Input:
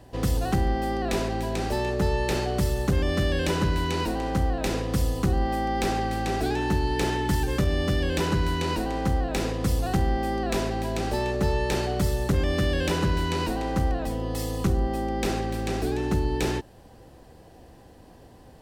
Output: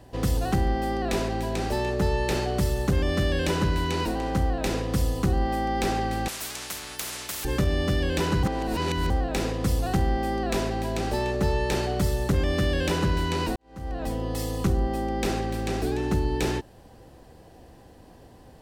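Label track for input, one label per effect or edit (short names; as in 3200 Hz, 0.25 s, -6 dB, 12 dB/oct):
6.280000	7.450000	spectral compressor 10:1
8.430000	9.100000	reverse
13.560000	14.070000	fade in quadratic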